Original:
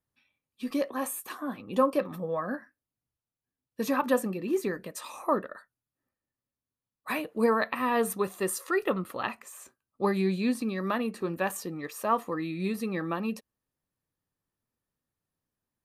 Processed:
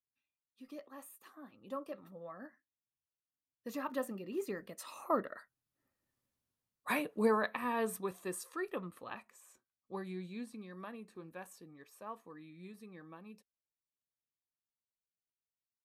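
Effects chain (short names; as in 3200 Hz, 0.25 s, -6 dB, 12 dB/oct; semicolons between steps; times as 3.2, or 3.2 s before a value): Doppler pass-by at 6.21, 12 m/s, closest 4 m; gain +5 dB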